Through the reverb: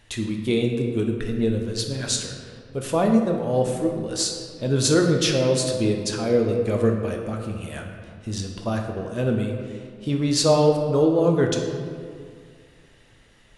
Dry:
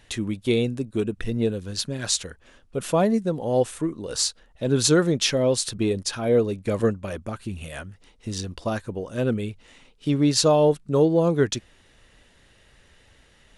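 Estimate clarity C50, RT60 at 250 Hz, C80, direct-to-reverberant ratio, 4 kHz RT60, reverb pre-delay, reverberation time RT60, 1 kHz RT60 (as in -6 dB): 4.5 dB, 2.3 s, 5.5 dB, 2.0 dB, 1.2 s, 7 ms, 2.1 s, 2.0 s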